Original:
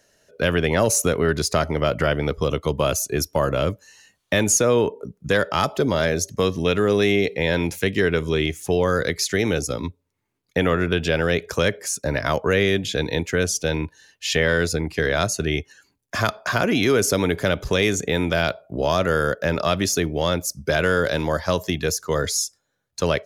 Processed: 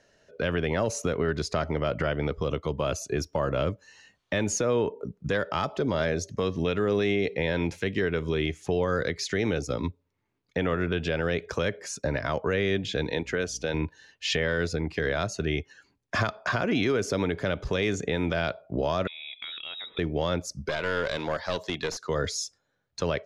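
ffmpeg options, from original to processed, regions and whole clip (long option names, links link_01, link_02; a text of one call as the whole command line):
ffmpeg -i in.wav -filter_complex "[0:a]asettb=1/sr,asplit=3[link_01][link_02][link_03];[link_01]atrim=end=13.094[link_04];[link_02]atrim=start=13.09:end=13.74,asetpts=PTS-STARTPTS,afade=type=in:duration=0.004:curve=qsin,afade=type=out:start_time=0.646:duration=0.004:curve=qsin,highpass=frequency=230:poles=1,aeval=exprs='val(0)+0.00447*(sin(2*PI*60*n/s)+sin(2*PI*2*60*n/s)/2+sin(2*PI*3*60*n/s)/3+sin(2*PI*4*60*n/s)/4+sin(2*PI*5*60*n/s)/5)':channel_layout=same[link_05];[link_03]atrim=start=13.736[link_06];[link_04][link_05]acrossfade=duration=0.004:curve1=hsin:curve2=qsin[link_07];[link_07][link_06]acrossfade=duration=0.004:curve1=qsin:curve2=hsin,asettb=1/sr,asplit=3[link_08][link_09][link_10];[link_08]atrim=end=19.074[link_11];[link_09]atrim=start=19.07:end=19.99,asetpts=PTS-STARTPTS,afade=type=in:duration=0.004:curve=qsin,afade=type=out:start_time=0.916:duration=0.004:curve=qsin,asubboost=boost=7:cutoff=140,lowpass=frequency=3300:width_type=q:width=0.5098,lowpass=frequency=3300:width_type=q:width=0.6013,lowpass=frequency=3300:width_type=q:width=0.9,lowpass=frequency=3300:width_type=q:width=2.563,afreqshift=-3900,acompressor=threshold=-32dB:ratio=12:attack=3.2:release=140:knee=1:detection=peak[link_12];[link_10]atrim=start=19.986[link_13];[link_11][link_12]acrossfade=duration=0.004:curve1=hsin:curve2=qsin[link_14];[link_14][link_13]acrossfade=duration=0.004:curve1=qsin:curve2=hsin,asettb=1/sr,asplit=3[link_15][link_16][link_17];[link_15]atrim=end=20.674[link_18];[link_16]atrim=start=20.67:end=22.09,asetpts=PTS-STARTPTS,afade=type=in:duration=0.004:curve=qsin,afade=type=out:start_time=1.416:duration=0.004:curve=qsin,highpass=frequency=430:poles=1,equalizer=frequency=4000:width=4.4:gain=8,aeval=exprs='clip(val(0),-1,0.0668)':channel_layout=same[link_19];[link_17]atrim=start=22.086[link_20];[link_18][link_19]acrossfade=duration=0.004:curve1=hsin:curve2=qsin[link_21];[link_21][link_20]acrossfade=duration=0.004:curve1=qsin:curve2=hsin,lowpass=6000,highshelf=frequency=4700:gain=-6.5,alimiter=limit=-16.5dB:level=0:latency=1:release=300" out.wav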